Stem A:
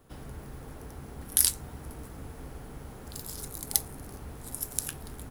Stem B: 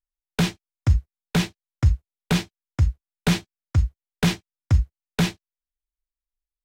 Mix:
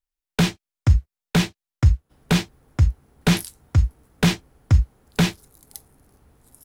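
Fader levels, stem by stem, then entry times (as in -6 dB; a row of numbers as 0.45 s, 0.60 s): -13.5 dB, +2.5 dB; 2.00 s, 0.00 s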